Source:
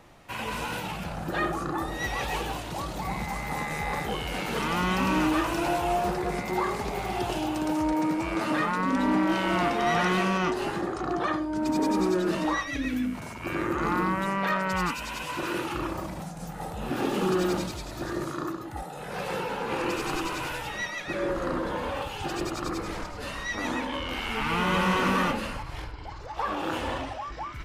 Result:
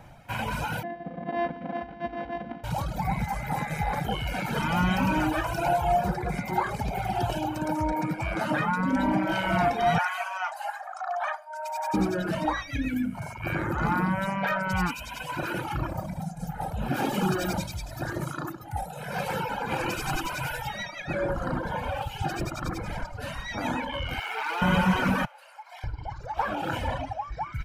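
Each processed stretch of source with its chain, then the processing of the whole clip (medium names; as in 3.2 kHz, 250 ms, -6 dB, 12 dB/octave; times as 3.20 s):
0.83–2.64 s: sorted samples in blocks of 128 samples + cabinet simulation 190–2600 Hz, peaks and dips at 250 Hz +3 dB, 1.1 kHz -7 dB, 1.6 kHz -6 dB, 2.4 kHz -8 dB + comb 4 ms, depth 86%
9.98–11.94 s: steep high-pass 620 Hz 96 dB/octave + peaking EQ 3.8 kHz -5.5 dB 1.1 oct
16.94–20.83 s: treble shelf 3.6 kHz +5.5 dB + hum notches 60/120/180/240 Hz
24.19–24.62 s: median filter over 3 samples + steep high-pass 340 Hz + transformer saturation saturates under 1.9 kHz
25.25–25.84 s: steep high-pass 580 Hz + compression, threshold -39 dBFS
whole clip: comb 1.3 ms, depth 53%; reverb removal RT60 1.7 s; graphic EQ 125/4000/8000 Hz +6/-5/-4 dB; trim +2.5 dB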